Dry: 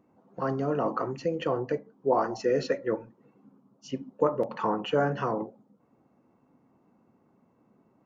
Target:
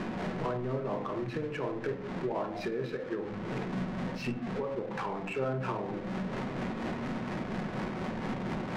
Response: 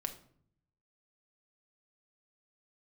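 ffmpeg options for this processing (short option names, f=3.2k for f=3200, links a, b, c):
-filter_complex "[0:a]aeval=exprs='val(0)+0.5*0.0251*sgn(val(0))':c=same,equalizer=f=2.2k:t=o:w=0.75:g=4,acompressor=threshold=-35dB:ratio=4,tremolo=f=4.6:d=0.33[a];[1:a]atrim=start_sample=2205[b];[a][b]afir=irnorm=-1:irlink=0,adynamicsmooth=sensitivity=7.5:basefreq=1.8k,asetrate=40517,aresample=44100,volume=4dB"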